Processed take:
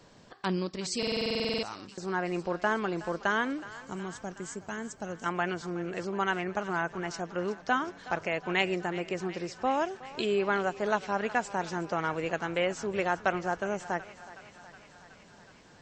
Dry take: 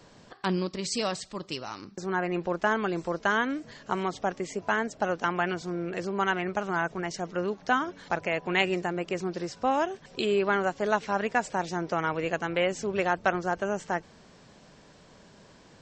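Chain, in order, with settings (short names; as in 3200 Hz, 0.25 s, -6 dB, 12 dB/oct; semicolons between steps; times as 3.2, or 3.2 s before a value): 3.68–5.26 EQ curve 160 Hz 0 dB, 950 Hz -12 dB, 4400 Hz -6 dB, 8300 Hz +8 dB; thinning echo 0.369 s, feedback 75%, high-pass 570 Hz, level -15.5 dB; stuck buffer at 0.98, samples 2048, times 13; gain -2.5 dB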